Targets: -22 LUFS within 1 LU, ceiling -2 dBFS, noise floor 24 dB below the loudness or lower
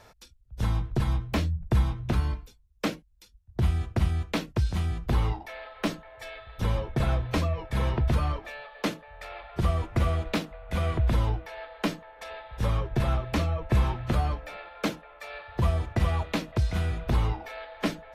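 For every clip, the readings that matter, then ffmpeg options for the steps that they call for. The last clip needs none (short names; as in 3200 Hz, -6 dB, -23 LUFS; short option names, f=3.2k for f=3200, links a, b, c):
loudness -29.0 LUFS; peak -14.0 dBFS; loudness target -22.0 LUFS
-> -af "volume=7dB"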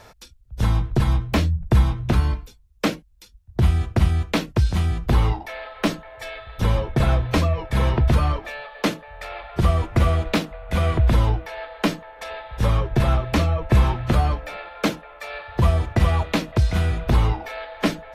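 loudness -22.0 LUFS; peak -7.0 dBFS; noise floor -51 dBFS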